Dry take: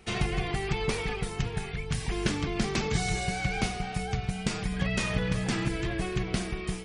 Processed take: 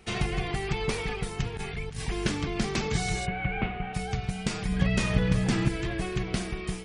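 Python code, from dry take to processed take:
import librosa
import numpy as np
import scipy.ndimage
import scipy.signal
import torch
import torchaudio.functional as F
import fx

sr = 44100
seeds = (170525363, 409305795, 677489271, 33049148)

y = fx.over_compress(x, sr, threshold_db=-33.0, ratio=-0.5, at=(1.57, 2.05))
y = fx.steep_lowpass(y, sr, hz=2900.0, slope=36, at=(3.25, 3.93), fade=0.02)
y = fx.low_shelf(y, sr, hz=390.0, db=5.5, at=(4.68, 5.69))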